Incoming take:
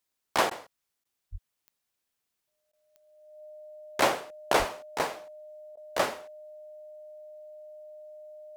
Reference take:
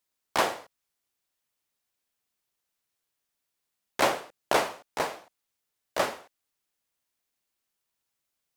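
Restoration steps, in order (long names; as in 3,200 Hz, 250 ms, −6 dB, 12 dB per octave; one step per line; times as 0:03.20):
click removal
notch filter 610 Hz, Q 30
high-pass at the plosives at 0:01.31/0:04.58
repair the gap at 0:00.50/0:01.04/0:02.72/0:05.76, 10 ms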